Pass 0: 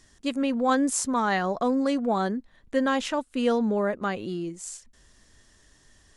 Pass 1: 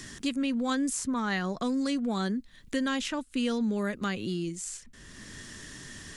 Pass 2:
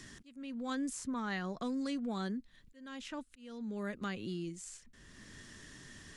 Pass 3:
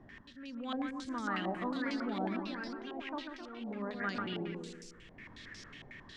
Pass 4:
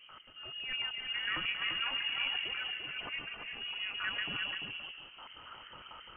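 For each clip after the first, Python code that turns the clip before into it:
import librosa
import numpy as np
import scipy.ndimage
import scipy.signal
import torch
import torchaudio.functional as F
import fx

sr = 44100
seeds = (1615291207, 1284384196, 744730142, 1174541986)

y1 = fx.peak_eq(x, sr, hz=710.0, db=-14.0, octaves=2.1)
y1 = fx.band_squash(y1, sr, depth_pct=70)
y1 = y1 * 10.0 ** (2.0 / 20.0)
y2 = fx.auto_swell(y1, sr, attack_ms=551.0)
y2 = fx.high_shelf(y2, sr, hz=6000.0, db=-5.0)
y2 = y2 * 10.0 ** (-7.5 / 20.0)
y3 = fx.echo_pitch(y2, sr, ms=760, semitones=3, count=2, db_per_echo=-6.0)
y3 = fx.echo_feedback(y3, sr, ms=141, feedback_pct=45, wet_db=-5.5)
y3 = fx.filter_held_lowpass(y3, sr, hz=11.0, low_hz=760.0, high_hz=5200.0)
y3 = y3 * 10.0 ** (-2.5 / 20.0)
y4 = fx.cvsd(y3, sr, bps=32000)
y4 = y4 + 10.0 ** (-5.5 / 20.0) * np.pad(y4, (int(343 * sr / 1000.0), 0))[:len(y4)]
y4 = fx.freq_invert(y4, sr, carrier_hz=3100)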